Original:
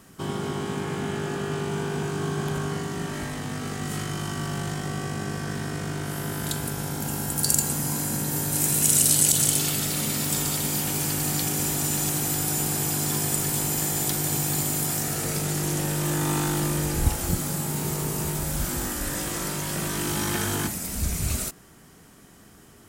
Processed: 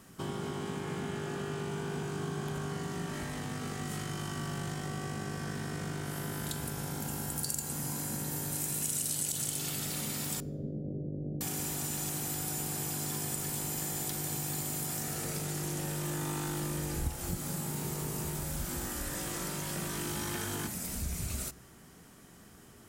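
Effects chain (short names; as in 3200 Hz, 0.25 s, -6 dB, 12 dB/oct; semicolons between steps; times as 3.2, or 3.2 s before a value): 10.4–11.41 steep low-pass 610 Hz 72 dB/oct; compressor 2.5:1, threshold -31 dBFS, peak gain reduction 11 dB; on a send: reverb RT60 1.3 s, pre-delay 3 ms, DRR 18 dB; on the sum: gain -4 dB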